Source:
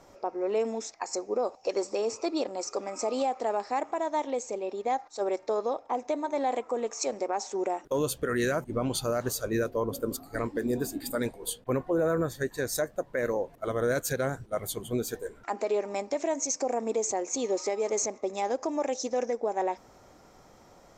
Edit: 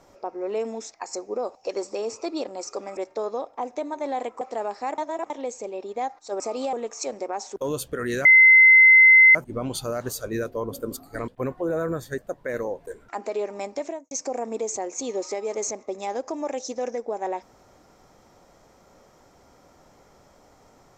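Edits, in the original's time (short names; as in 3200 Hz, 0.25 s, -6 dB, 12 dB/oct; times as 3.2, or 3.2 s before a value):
2.97–3.3 swap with 5.29–6.73
3.87–4.19 reverse
7.56–7.86 cut
8.55 add tone 2060 Hz -9 dBFS 1.10 s
10.48–11.57 cut
12.47–12.87 cut
13.56–15.22 cut
16.16–16.46 studio fade out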